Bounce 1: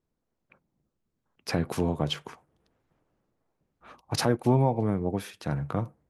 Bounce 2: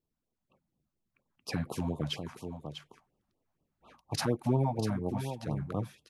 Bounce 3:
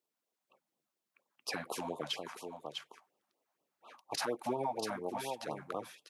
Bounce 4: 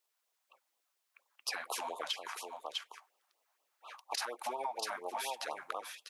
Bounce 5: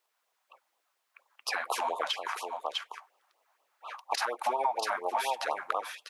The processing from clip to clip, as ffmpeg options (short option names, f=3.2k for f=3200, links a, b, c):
-af "aecho=1:1:647:0.355,afftfilt=real='re*(1-between(b*sr/1024,360*pow(1900/360,0.5+0.5*sin(2*PI*4.2*pts/sr))/1.41,360*pow(1900/360,0.5+0.5*sin(2*PI*4.2*pts/sr))*1.41))':imag='im*(1-between(b*sr/1024,360*pow(1900/360,0.5+0.5*sin(2*PI*4.2*pts/sr))/1.41,360*pow(1900/360,0.5+0.5*sin(2*PI*4.2*pts/sr))*1.41))':win_size=1024:overlap=0.75,volume=-5dB"
-af "highpass=510,alimiter=level_in=4.5dB:limit=-24dB:level=0:latency=1:release=77,volume=-4.5dB,volume=3.5dB"
-af "highpass=850,acompressor=threshold=-41dB:ratio=6,volume=7dB"
-af "equalizer=f=970:w=0.35:g=9.5"